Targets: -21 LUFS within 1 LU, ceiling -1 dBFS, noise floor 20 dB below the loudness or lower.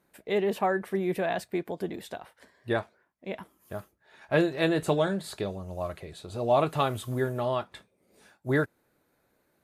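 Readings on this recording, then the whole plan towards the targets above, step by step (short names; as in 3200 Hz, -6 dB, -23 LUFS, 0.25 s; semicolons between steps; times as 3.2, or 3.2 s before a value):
loudness -29.5 LUFS; peak -11.5 dBFS; loudness target -21.0 LUFS
-> gain +8.5 dB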